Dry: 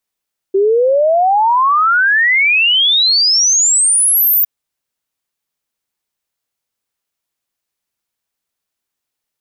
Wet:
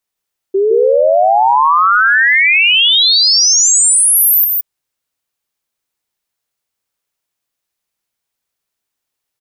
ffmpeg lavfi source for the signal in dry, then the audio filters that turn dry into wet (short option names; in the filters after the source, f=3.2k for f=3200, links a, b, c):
-f lavfi -i "aevalsrc='0.376*clip(min(t,3.91-t)/0.01,0,1)*sin(2*PI*380*3.91/log(15000/380)*(exp(log(15000/380)*t/3.91)-1))':d=3.91:s=44100"
-filter_complex "[0:a]equalizer=f=220:t=o:w=0.77:g=-2,asplit=2[a][b];[b]aecho=0:1:161:0.708[c];[a][c]amix=inputs=2:normalize=0"